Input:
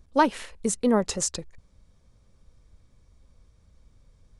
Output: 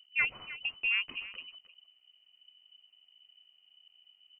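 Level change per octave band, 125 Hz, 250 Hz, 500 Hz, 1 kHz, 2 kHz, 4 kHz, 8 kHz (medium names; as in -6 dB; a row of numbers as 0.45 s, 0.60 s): under -20 dB, -36.5 dB, under -30 dB, -23.5 dB, +4.5 dB, +0.5 dB, under -40 dB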